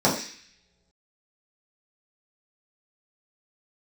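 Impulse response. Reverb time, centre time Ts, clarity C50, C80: no single decay rate, 30 ms, 7.0 dB, 10.0 dB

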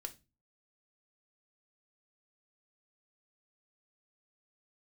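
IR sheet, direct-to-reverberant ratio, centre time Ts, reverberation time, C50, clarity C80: 6.5 dB, 6 ms, 0.25 s, 18.0 dB, 25.0 dB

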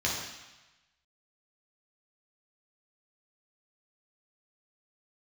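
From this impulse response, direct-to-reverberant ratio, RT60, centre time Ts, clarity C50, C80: -5.0 dB, 1.1 s, 62 ms, 1.5 dB, 4.0 dB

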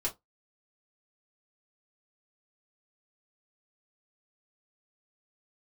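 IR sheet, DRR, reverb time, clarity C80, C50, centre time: -4.0 dB, 0.15 s, 30.0 dB, 17.5 dB, 13 ms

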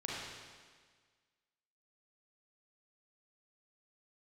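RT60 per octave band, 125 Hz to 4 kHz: 1.6 s, 1.6 s, 1.6 s, 1.6 s, 1.6 s, 1.6 s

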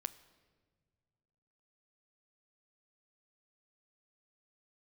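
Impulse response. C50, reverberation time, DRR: 16.5 dB, no single decay rate, 13.0 dB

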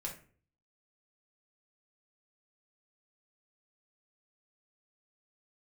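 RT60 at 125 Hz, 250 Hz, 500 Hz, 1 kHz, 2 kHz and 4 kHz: 0.70 s, 0.55 s, 0.50 s, 0.40 s, 0.40 s, 0.25 s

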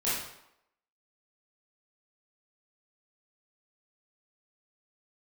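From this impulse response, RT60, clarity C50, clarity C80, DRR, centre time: 0.80 s, 0.0 dB, 4.5 dB, -10.5 dB, 64 ms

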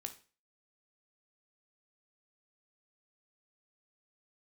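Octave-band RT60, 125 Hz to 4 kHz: 0.40 s, 0.35 s, 0.35 s, 0.35 s, 0.35 s, 0.35 s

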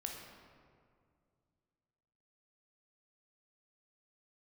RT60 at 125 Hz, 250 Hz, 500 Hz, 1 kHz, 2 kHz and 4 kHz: 3.0 s, 2.7 s, 2.3 s, 2.0 s, 1.6 s, 1.1 s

